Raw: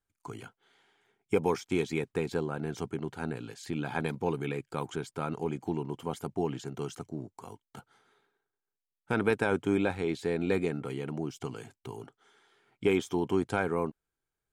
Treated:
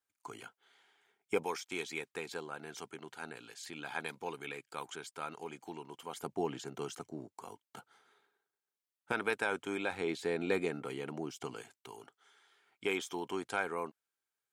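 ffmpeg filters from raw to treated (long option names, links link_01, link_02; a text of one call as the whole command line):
ffmpeg -i in.wav -af "asetnsamples=nb_out_samples=441:pad=0,asendcmd='1.43 highpass f 1500;6.16 highpass f 450;9.12 highpass f 1100;9.92 highpass f 470;11.62 highpass f 1100',highpass=frequency=680:poles=1" out.wav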